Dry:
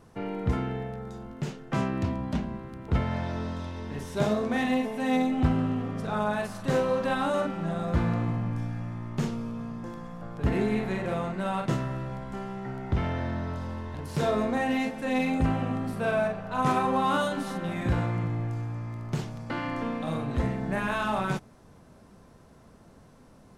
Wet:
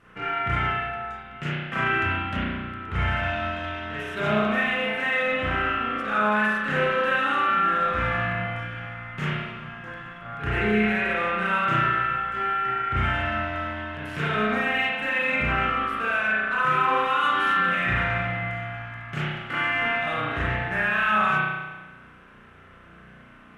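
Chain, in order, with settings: high-order bell 2 kHz +14.5 dB; peak limiter -17 dBFS, peak gain reduction 10.5 dB; Chebyshev shaper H 7 -32 dB, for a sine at -17 dBFS; spring tank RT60 1.2 s, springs 33 ms, chirp 65 ms, DRR -8.5 dB; trim -6 dB

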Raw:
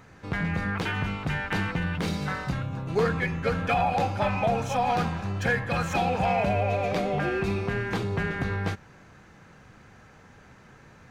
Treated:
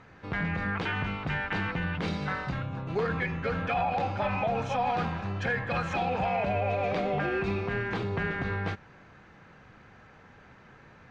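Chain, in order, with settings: low-pass 3.8 kHz 12 dB/octave; bass shelf 330 Hz -3.5 dB; peak limiter -20 dBFS, peak gain reduction 5.5 dB

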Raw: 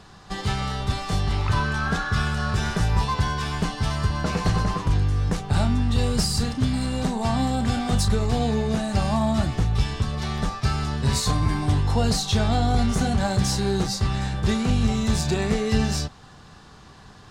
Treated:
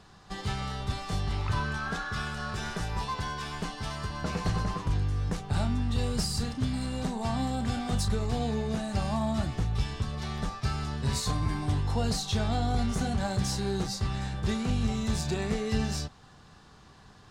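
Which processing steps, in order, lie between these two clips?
1.77–4.23 s: peaking EQ 83 Hz -7 dB 2.2 oct; trim -7 dB

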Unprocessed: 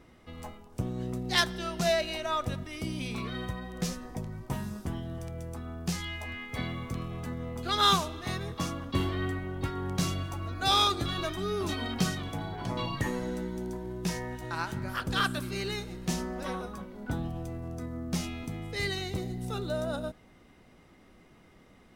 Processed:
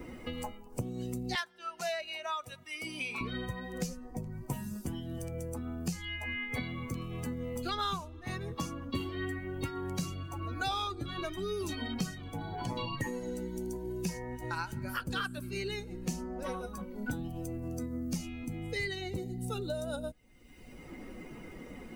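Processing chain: expander on every frequency bin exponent 1.5; 1.35–3.21 s: high-pass 850 Hz 12 dB/octave; three bands compressed up and down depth 100%

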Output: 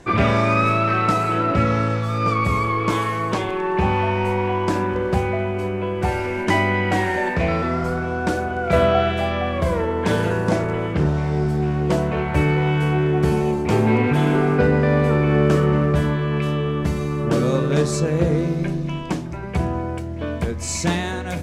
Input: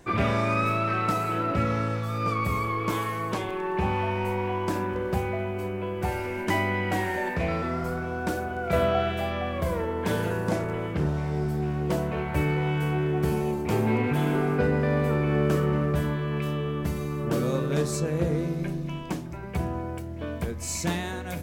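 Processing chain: low-pass 8.4 kHz 12 dB/octave; trim +7 dB

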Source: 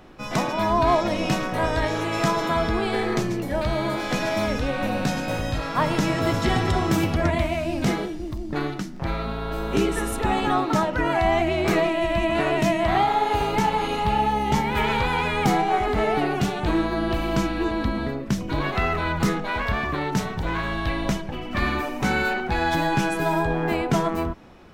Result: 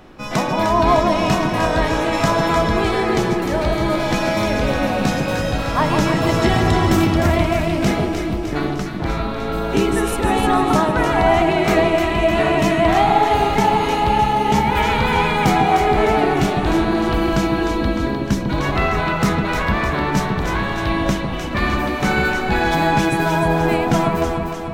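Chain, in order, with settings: echo whose repeats swap between lows and highs 152 ms, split 1.1 kHz, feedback 75%, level -3.5 dB; trim +4 dB

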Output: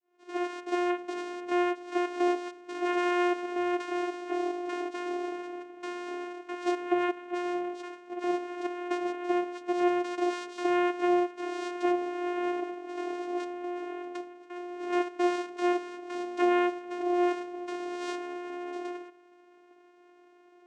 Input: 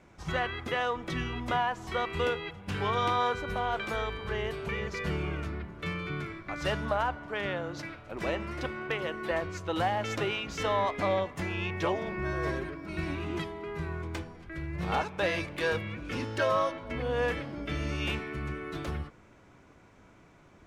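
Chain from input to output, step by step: fade-in on the opening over 0.55 s; vocoder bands 4, saw 354 Hz; trim +2.5 dB

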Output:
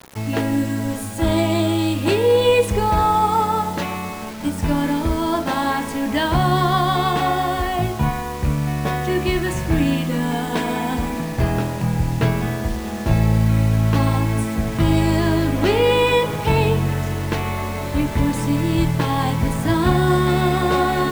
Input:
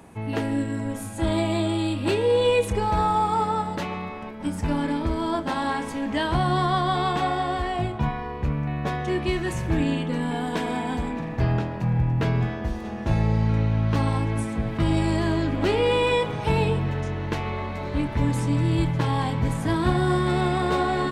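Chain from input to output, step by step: bit crusher 7-bit; de-hum 62.11 Hz, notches 28; trim +5.5 dB

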